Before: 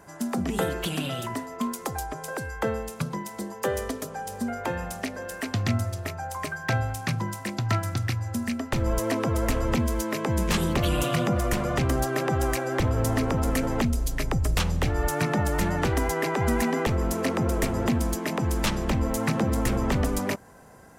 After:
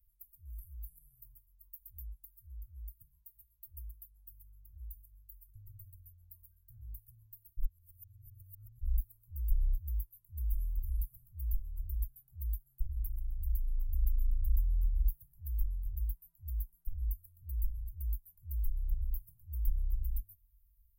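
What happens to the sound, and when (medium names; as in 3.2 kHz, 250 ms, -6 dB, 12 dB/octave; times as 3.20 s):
7.57–8.81 s: reverse
whole clip: inverse Chebyshev band-stop 200–5600 Hz, stop band 70 dB; trim +2.5 dB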